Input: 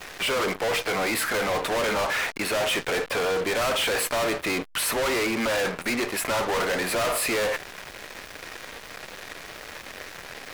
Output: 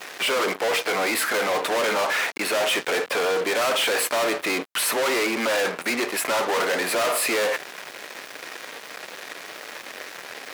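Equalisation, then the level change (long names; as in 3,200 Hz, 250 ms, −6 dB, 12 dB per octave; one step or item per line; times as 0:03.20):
high-pass filter 260 Hz 12 dB per octave
+2.5 dB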